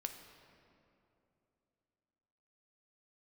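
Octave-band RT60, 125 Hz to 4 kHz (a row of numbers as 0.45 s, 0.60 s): 3.2 s, 3.4 s, 3.1 s, 2.7 s, 2.1 s, 1.6 s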